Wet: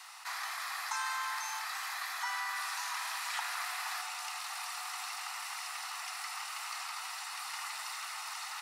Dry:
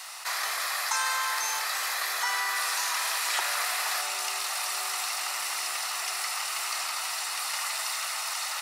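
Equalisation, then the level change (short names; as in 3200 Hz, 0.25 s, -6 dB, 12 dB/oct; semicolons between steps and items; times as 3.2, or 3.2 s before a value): steep high-pass 750 Hz 48 dB/oct; tilt -2 dB/oct; -6.0 dB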